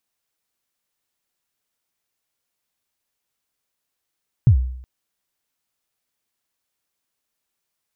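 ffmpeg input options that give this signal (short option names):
-f lavfi -i "aevalsrc='0.501*pow(10,-3*t/0.69)*sin(2*PI*(140*0.092/log(63/140)*(exp(log(63/140)*min(t,0.092)/0.092)-1)+63*max(t-0.092,0)))':d=0.37:s=44100"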